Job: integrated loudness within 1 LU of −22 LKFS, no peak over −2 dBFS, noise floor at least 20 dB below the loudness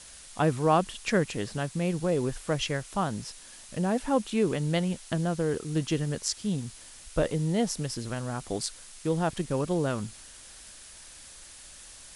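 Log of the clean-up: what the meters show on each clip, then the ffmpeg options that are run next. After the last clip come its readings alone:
background noise floor −49 dBFS; target noise floor −50 dBFS; integrated loudness −29.5 LKFS; sample peak −10.5 dBFS; target loudness −22.0 LKFS
→ -af "afftdn=noise_reduction=6:noise_floor=-49"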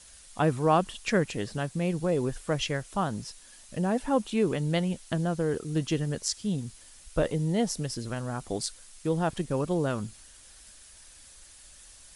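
background noise floor −52 dBFS; integrated loudness −29.5 LKFS; sample peak −10.5 dBFS; target loudness −22.0 LKFS
→ -af "volume=7.5dB"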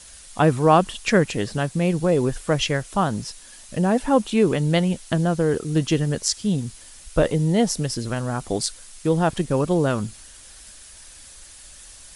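integrated loudness −22.0 LKFS; sample peak −3.0 dBFS; background noise floor −45 dBFS

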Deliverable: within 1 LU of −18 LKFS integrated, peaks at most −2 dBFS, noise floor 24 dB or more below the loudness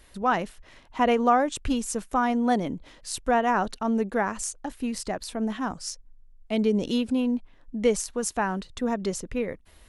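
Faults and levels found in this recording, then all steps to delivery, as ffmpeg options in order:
integrated loudness −27.0 LKFS; sample peak −9.5 dBFS; target loudness −18.0 LKFS
→ -af "volume=9dB,alimiter=limit=-2dB:level=0:latency=1"

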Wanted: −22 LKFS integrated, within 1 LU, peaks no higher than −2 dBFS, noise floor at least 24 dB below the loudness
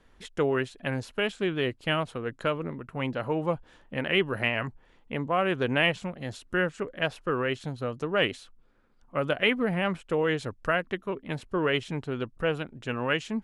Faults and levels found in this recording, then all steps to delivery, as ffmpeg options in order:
integrated loudness −29.0 LKFS; sample peak −10.0 dBFS; target loudness −22.0 LKFS
→ -af "volume=7dB"

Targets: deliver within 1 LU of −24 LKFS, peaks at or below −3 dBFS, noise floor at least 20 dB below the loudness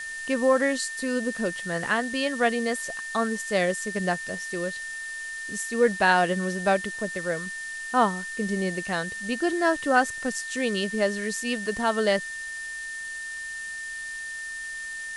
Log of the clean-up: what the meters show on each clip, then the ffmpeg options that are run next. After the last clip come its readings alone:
interfering tone 1,800 Hz; level of the tone −33 dBFS; background noise floor −36 dBFS; target noise floor −47 dBFS; integrated loudness −26.5 LKFS; sample peak −7.0 dBFS; target loudness −24.0 LKFS
→ -af "bandreject=frequency=1800:width=30"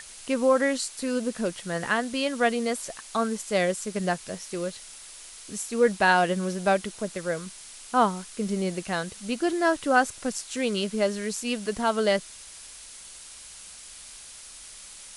interfering tone none found; background noise floor −45 dBFS; target noise floor −47 dBFS
→ -af "afftdn=noise_reduction=6:noise_floor=-45"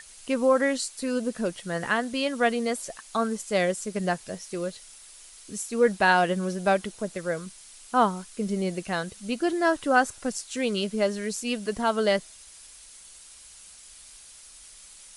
background noise floor −49 dBFS; integrated loudness −26.5 LKFS; sample peak −7.5 dBFS; target loudness −24.0 LKFS
→ -af "volume=2.5dB"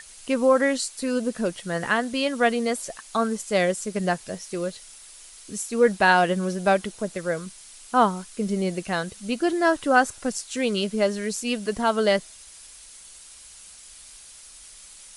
integrated loudness −24.0 LKFS; sample peak −5.0 dBFS; background noise floor −47 dBFS

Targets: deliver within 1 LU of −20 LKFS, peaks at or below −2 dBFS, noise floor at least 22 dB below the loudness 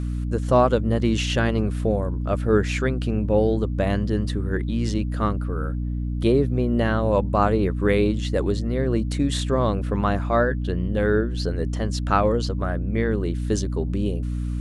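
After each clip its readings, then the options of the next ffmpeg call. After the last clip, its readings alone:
mains hum 60 Hz; hum harmonics up to 300 Hz; level of the hum −23 dBFS; integrated loudness −23.0 LKFS; sample peak −5.5 dBFS; target loudness −20.0 LKFS
→ -af "bandreject=frequency=60:width_type=h:width=6,bandreject=frequency=120:width_type=h:width=6,bandreject=frequency=180:width_type=h:width=6,bandreject=frequency=240:width_type=h:width=6,bandreject=frequency=300:width_type=h:width=6"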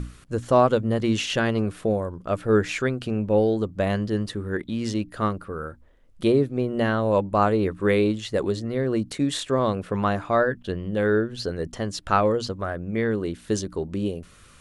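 mains hum none found; integrated loudness −24.5 LKFS; sample peak −5.5 dBFS; target loudness −20.0 LKFS
→ -af "volume=4.5dB,alimiter=limit=-2dB:level=0:latency=1"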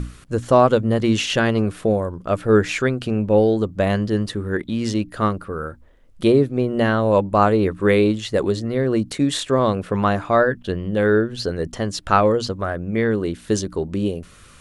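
integrated loudness −20.0 LKFS; sample peak −2.0 dBFS; background noise floor −47 dBFS

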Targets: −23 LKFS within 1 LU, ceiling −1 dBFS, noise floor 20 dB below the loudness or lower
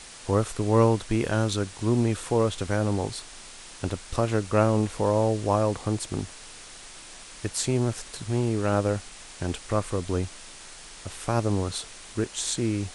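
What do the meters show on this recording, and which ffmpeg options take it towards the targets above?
background noise floor −45 dBFS; target noise floor −47 dBFS; integrated loudness −26.5 LKFS; sample peak −7.5 dBFS; target loudness −23.0 LKFS
→ -af "afftdn=noise_reduction=6:noise_floor=-45"
-af "volume=3.5dB"

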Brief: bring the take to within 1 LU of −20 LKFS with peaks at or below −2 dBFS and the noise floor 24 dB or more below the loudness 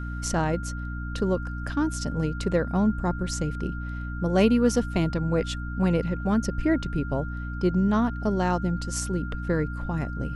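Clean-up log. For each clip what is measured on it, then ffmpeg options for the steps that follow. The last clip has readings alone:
mains hum 60 Hz; hum harmonics up to 300 Hz; level of the hum −30 dBFS; interfering tone 1,400 Hz; level of the tone −39 dBFS; integrated loudness −26.5 LKFS; sample peak −8.5 dBFS; target loudness −20.0 LKFS
→ -af "bandreject=frequency=60:width_type=h:width=4,bandreject=frequency=120:width_type=h:width=4,bandreject=frequency=180:width_type=h:width=4,bandreject=frequency=240:width_type=h:width=4,bandreject=frequency=300:width_type=h:width=4"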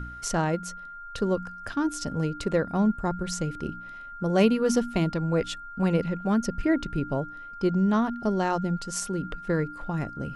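mains hum none found; interfering tone 1,400 Hz; level of the tone −39 dBFS
→ -af "bandreject=frequency=1400:width=30"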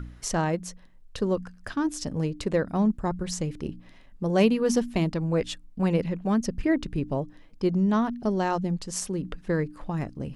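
interfering tone none found; integrated loudness −27.5 LKFS; sample peak −8.5 dBFS; target loudness −20.0 LKFS
→ -af "volume=7.5dB,alimiter=limit=-2dB:level=0:latency=1"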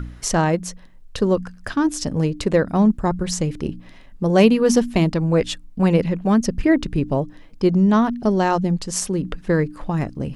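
integrated loudness −20.0 LKFS; sample peak −2.0 dBFS; background noise floor −44 dBFS

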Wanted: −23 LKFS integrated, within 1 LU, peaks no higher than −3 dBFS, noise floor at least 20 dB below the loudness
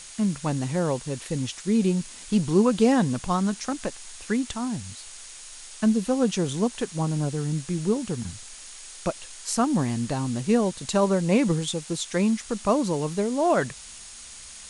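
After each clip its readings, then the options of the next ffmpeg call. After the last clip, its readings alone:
interfering tone 6,700 Hz; level of the tone −50 dBFS; background noise floor −43 dBFS; target noise floor −46 dBFS; integrated loudness −25.5 LKFS; sample peak −8.0 dBFS; target loudness −23.0 LKFS
→ -af "bandreject=frequency=6700:width=30"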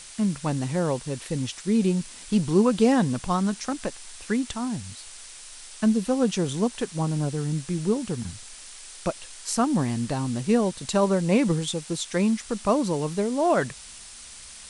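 interfering tone none found; background noise floor −44 dBFS; target noise floor −46 dBFS
→ -af "afftdn=noise_reduction=6:noise_floor=-44"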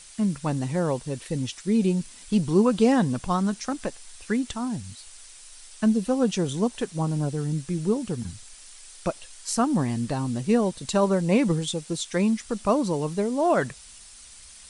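background noise floor −47 dBFS; integrated loudness −25.5 LKFS; sample peak −8.5 dBFS; target loudness −23.0 LKFS
→ -af "volume=2.5dB"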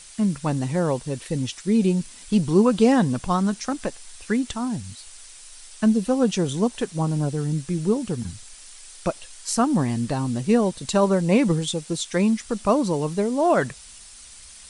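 integrated loudness −23.0 LKFS; sample peak −6.0 dBFS; background noise floor −45 dBFS

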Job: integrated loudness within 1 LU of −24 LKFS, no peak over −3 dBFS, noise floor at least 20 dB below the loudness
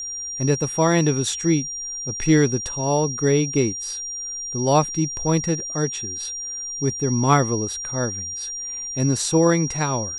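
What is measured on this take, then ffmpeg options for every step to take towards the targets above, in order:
interfering tone 5,700 Hz; level of the tone −28 dBFS; integrated loudness −22.0 LKFS; sample peak −4.5 dBFS; target loudness −24.0 LKFS
→ -af "bandreject=frequency=5700:width=30"
-af "volume=-2dB"

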